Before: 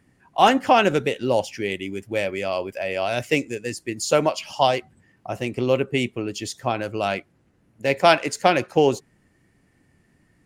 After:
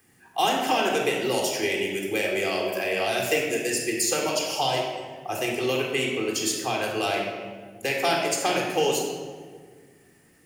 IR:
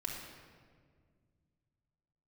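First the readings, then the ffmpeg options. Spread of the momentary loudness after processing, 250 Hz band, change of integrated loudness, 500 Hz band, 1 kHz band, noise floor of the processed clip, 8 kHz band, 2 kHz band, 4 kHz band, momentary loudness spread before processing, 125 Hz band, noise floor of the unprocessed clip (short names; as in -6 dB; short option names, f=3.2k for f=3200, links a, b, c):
9 LU, -4.0 dB, -3.0 dB, -3.5 dB, -5.0 dB, -57 dBFS, +6.0 dB, -0.5 dB, +1.0 dB, 12 LU, -7.0 dB, -63 dBFS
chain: -filter_complex "[0:a]acrossover=split=330|710|1800[a][b][c][d];[a]acompressor=threshold=-34dB:ratio=4[e];[b]acompressor=threshold=-29dB:ratio=4[f];[c]acompressor=threshold=-35dB:ratio=4[g];[d]acompressor=threshold=-34dB:ratio=4[h];[e][f][g][h]amix=inputs=4:normalize=0,aemphasis=mode=production:type=bsi[i];[1:a]atrim=start_sample=2205,asetrate=52920,aresample=44100[j];[i][j]afir=irnorm=-1:irlink=0,volume=4.5dB"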